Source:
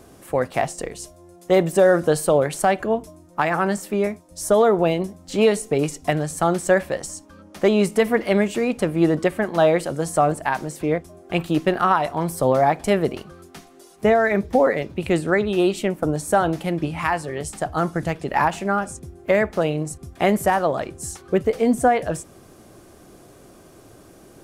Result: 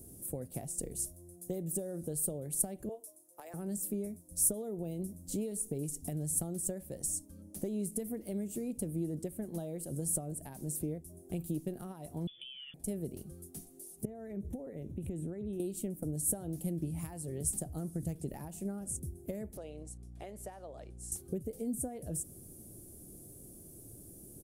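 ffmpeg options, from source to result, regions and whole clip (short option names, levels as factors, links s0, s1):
-filter_complex "[0:a]asettb=1/sr,asplit=3[s0][s1][s2];[s0]atrim=end=2.894[s3];[s1]atrim=start=2.89:end=3.54,asetpts=PTS-STARTPTS,afade=t=in:d=0.004:c=qsin,afade=t=out:st=0.646:d=0.004:c=qsin,highpass=f=450:w=0.5412,highpass=f=450:w=1.3066,tremolo=f=220:d=0.182[s4];[s2]atrim=start=3.536[s5];[s3][s4]acrossfade=d=0.004:c1=hsin:c2=qsin[s6];[s6][s5]acrossfade=d=0.004:c1=qsin:c2=hsin,asettb=1/sr,asplit=3[s7][s8][s9];[s7]atrim=end=12.274[s10];[s8]atrim=start=12.27:end=12.74,asetpts=PTS-STARTPTS,afade=t=in:d=0.004:c=qsin,afade=t=out:st=0.466:d=0.004:c=qsin,lowpass=f=3100:t=q:w=0.5098,lowpass=f=3100:t=q:w=0.6013,lowpass=f=3100:t=q:w=0.9,lowpass=f=3100:t=q:w=2.563,afreqshift=-3600,aecho=1:1:5.9:0.86,atrim=end_sample=20727[s11];[s9]atrim=start=12.736[s12];[s10][s11]acrossfade=d=0.004:c1=hsin:c2=qsin[s13];[s13][s12]acrossfade=d=0.004:c1=qsin:c2=hsin,asettb=1/sr,asplit=3[s14][s15][s16];[s14]atrim=end=14.054[s17];[s15]atrim=start=14.05:end=15.6,asetpts=PTS-STARTPTS,afade=t=in:d=0.004:c=qsin,afade=t=out:st=1.546:d=0.004:c=qsin,asuperstop=centerf=4700:order=4:qfactor=3.2,highshelf=f=4400:g=-12,acompressor=threshold=0.0398:ratio=6:attack=3.2:release=140:knee=1:detection=peak[s18];[s16]atrim=start=15.596[s19];[s17][s18]acrossfade=d=0.004:c1=hsin:c2=qsin[s20];[s20][s19]acrossfade=d=0.004:c1=qsin:c2=hsin,asettb=1/sr,asplit=3[s21][s22][s23];[s21]atrim=end=19.574[s24];[s22]atrim=start=19.57:end=21.12,asetpts=PTS-STARTPTS,afade=t=in:d=0.004:c=qsin,afade=t=out:st=1.546:d=0.004:c=qsin,highpass=690,lowpass=3900,aeval=exprs='val(0)+0.00562*(sin(2*PI*60*n/s)+sin(2*PI*2*60*n/s)/2+sin(2*PI*3*60*n/s)/3+sin(2*PI*4*60*n/s)/4+sin(2*PI*5*60*n/s)/5)':c=same[s25];[s23]atrim=start=21.116[s26];[s24][s25]acrossfade=d=0.004:c1=hsin:c2=qsin[s27];[s27][s26]acrossfade=d=0.004:c1=qsin:c2=hsin,acompressor=threshold=0.0501:ratio=6,firequalizer=gain_entry='entry(120,0);entry(1100,-27);entry(9800,9)':delay=0.05:min_phase=1,volume=0.75"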